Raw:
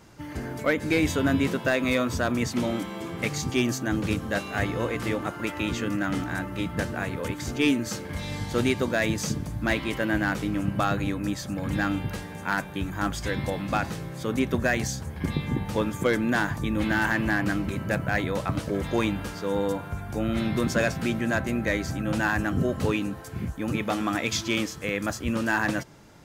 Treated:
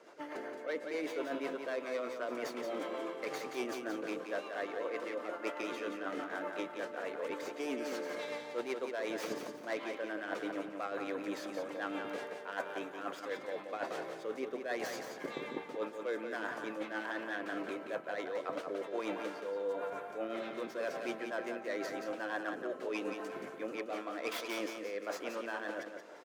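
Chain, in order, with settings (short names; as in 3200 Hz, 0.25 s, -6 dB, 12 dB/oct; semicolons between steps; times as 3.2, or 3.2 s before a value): tracing distortion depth 0.16 ms; HPF 480 Hz 24 dB/oct; tilt -4 dB/oct; notch 830 Hz, Q 12; reverse; compressor 6:1, threshold -37 dBFS, peak gain reduction 17.5 dB; reverse; rotary speaker horn 8 Hz, later 1.1 Hz, at 23.4; on a send: feedback echo 0.176 s, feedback 28%, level -6.5 dB; on the sum: gain +3 dB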